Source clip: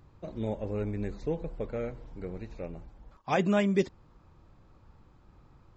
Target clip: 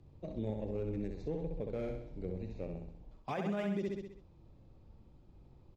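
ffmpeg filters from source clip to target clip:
-filter_complex "[0:a]acrossover=split=140|800|2300[a][b][c][d];[c]aeval=exprs='sgn(val(0))*max(abs(val(0))-0.00422,0)':c=same[e];[d]aemphasis=mode=reproduction:type=50fm[f];[a][b][e][f]amix=inputs=4:normalize=0,aecho=1:1:65|130|195|260|325|390:0.531|0.265|0.133|0.0664|0.0332|0.0166,alimiter=level_in=2dB:limit=-24dB:level=0:latency=1:release=151,volume=-2dB,volume=-2dB"

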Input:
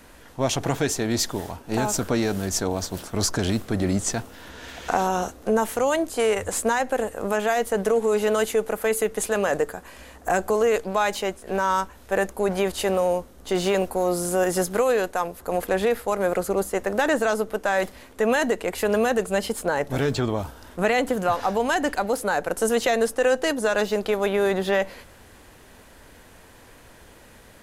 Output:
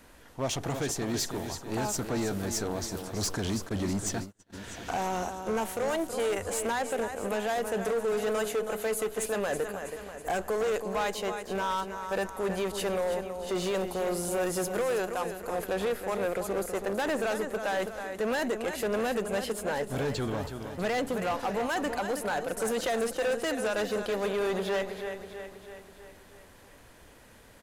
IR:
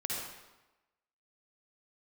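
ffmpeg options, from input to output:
-filter_complex "[0:a]aecho=1:1:324|648|972|1296|1620|1944:0.316|0.174|0.0957|0.0526|0.0289|0.0159,volume=19dB,asoftclip=hard,volume=-19dB,asplit=3[a][b][c];[a]afade=t=out:st=3.68:d=0.02[d];[b]agate=range=-35dB:threshold=-28dB:ratio=16:detection=peak,afade=t=in:st=3.68:d=0.02,afade=t=out:st=4.52:d=0.02[e];[c]afade=t=in:st=4.52:d=0.02[f];[d][e][f]amix=inputs=3:normalize=0,volume=-6dB"

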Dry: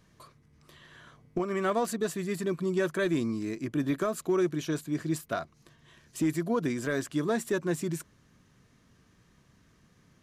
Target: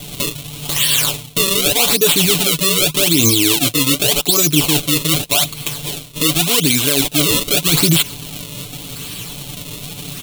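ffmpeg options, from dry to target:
-af "acrusher=samples=32:mix=1:aa=0.000001:lfo=1:lforange=51.2:lforate=0.85,equalizer=f=5.7k:w=1.5:g=-7,bandreject=f=4.8k:w=14,aecho=1:1:6.9:0.84,aexciter=amount=10.3:drive=8.4:freq=2.7k,highshelf=f=3.8k:g=-8.5,areverse,acompressor=threshold=-32dB:ratio=16,areverse,alimiter=level_in=27.5dB:limit=-1dB:release=50:level=0:latency=1,volume=-1dB"

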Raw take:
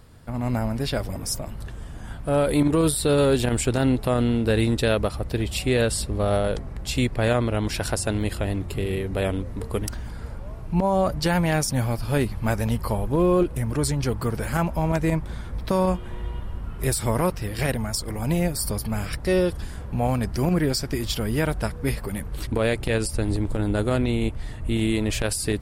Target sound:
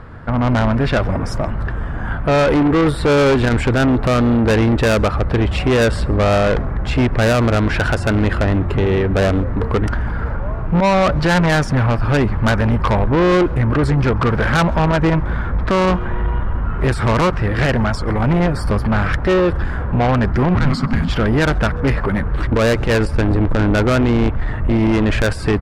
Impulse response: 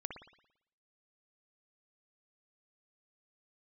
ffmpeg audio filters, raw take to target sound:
-filter_complex "[0:a]lowpass=f=1.5k:t=q:w=1.9,asplit=2[a][b];[b]alimiter=limit=-14.5dB:level=0:latency=1:release=101,volume=3dB[c];[a][c]amix=inputs=2:normalize=0,asoftclip=type=tanh:threshold=-17dB,aemphasis=mode=production:type=cd,asplit=2[d][e];[e]adelay=134.1,volume=-26dB,highshelf=f=4k:g=-3.02[f];[d][f]amix=inputs=2:normalize=0,asplit=3[g][h][i];[g]afade=t=out:st=20.54:d=0.02[j];[h]afreqshift=-280,afade=t=in:st=20.54:d=0.02,afade=t=out:st=21.07:d=0.02[k];[i]afade=t=in:st=21.07:d=0.02[l];[j][k][l]amix=inputs=3:normalize=0,volume=6.5dB"

